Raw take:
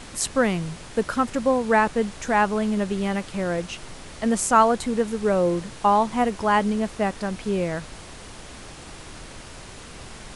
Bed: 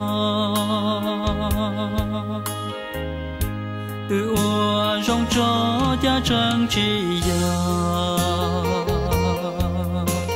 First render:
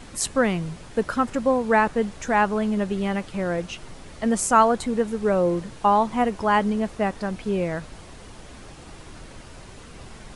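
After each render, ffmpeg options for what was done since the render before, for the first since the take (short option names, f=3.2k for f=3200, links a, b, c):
-af "afftdn=nr=6:nf=-42"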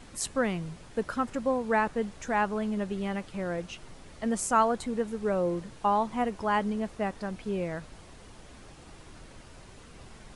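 -af "volume=-7dB"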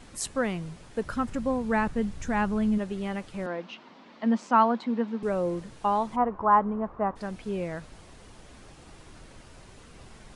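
-filter_complex "[0:a]asplit=3[a][b][c];[a]afade=t=out:st=1.03:d=0.02[d];[b]asubboost=boost=5:cutoff=250,afade=t=in:st=1.03:d=0.02,afade=t=out:st=2.77:d=0.02[e];[c]afade=t=in:st=2.77:d=0.02[f];[d][e][f]amix=inputs=3:normalize=0,asettb=1/sr,asplit=3[g][h][i];[g]atrim=end=3.464[j];[h]atrim=start=3.46:end=5.23,asetpts=PTS-STARTPTS,afade=t=in:d=0.004:c=qsin,afade=t=out:st=1.766:d=0.004:c=qsin,highpass=f=210:w=0.5412,highpass=f=210:w=1.3066,equalizer=f=230:t=q:w=4:g=8,equalizer=f=410:t=q:w=4:g=-4,equalizer=f=980:t=q:w=4:g=7,lowpass=f=4.5k:w=0.5412,lowpass=f=4.5k:w=1.3066[k];[i]atrim=start=5.226[l];[j][k]acrossfade=d=0.004:c1=hsin:c2=qsin[m];[m][l]acrossfade=d=0.004:c1=qsin:c2=hsin,asplit=3[n][o][p];[n]afade=t=out:st=6.15:d=0.02[q];[o]lowpass=f=1.1k:t=q:w=3.3,afade=t=in:st=6.15:d=0.02,afade=t=out:st=7.15:d=0.02[r];[p]afade=t=in:st=7.15:d=0.02[s];[q][r][s]amix=inputs=3:normalize=0"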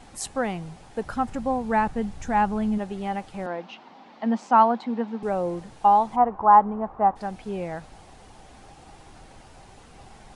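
-af "equalizer=f=790:w=4.4:g=12"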